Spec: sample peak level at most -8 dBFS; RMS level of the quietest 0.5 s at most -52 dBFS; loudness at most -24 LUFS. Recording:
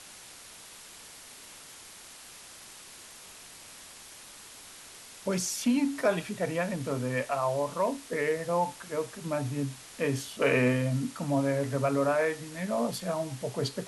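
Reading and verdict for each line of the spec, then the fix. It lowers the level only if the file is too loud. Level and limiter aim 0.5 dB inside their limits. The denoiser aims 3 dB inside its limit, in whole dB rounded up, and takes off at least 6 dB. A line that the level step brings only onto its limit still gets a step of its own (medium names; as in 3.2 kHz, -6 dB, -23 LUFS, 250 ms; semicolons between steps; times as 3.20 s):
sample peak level -14.5 dBFS: pass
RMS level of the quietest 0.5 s -49 dBFS: fail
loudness -30.0 LUFS: pass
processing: noise reduction 6 dB, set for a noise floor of -49 dBFS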